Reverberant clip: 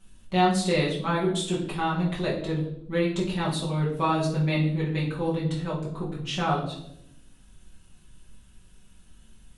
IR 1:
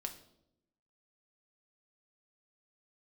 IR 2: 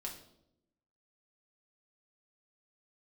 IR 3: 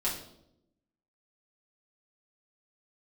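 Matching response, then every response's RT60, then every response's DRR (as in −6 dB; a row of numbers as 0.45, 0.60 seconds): 3; 0.80, 0.80, 0.80 seconds; 4.0, −1.5, −7.0 decibels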